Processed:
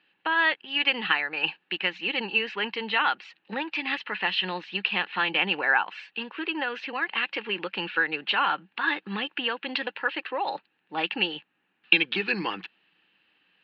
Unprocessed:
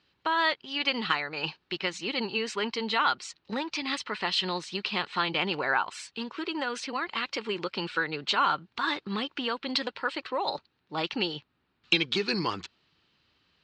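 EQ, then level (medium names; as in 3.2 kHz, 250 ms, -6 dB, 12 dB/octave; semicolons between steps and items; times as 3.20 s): cabinet simulation 180–3100 Hz, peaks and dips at 190 Hz +9 dB, 310 Hz +7 dB, 500 Hz +6 dB, 810 Hz +9 dB, 1.7 kHz +10 dB, 2.7 kHz +9 dB; treble shelf 2.2 kHz +11 dB; -6.5 dB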